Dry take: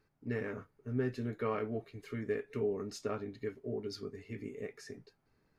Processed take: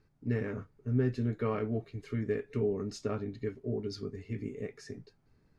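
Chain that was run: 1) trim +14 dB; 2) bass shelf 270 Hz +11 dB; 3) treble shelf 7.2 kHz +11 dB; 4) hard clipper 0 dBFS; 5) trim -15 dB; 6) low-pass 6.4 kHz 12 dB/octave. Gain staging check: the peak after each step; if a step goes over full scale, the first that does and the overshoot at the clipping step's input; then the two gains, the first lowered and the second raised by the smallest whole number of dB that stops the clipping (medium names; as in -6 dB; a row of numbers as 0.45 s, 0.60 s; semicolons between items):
-8.5 dBFS, -2.5 dBFS, -2.5 dBFS, -2.5 dBFS, -17.5 dBFS, -17.5 dBFS; nothing clips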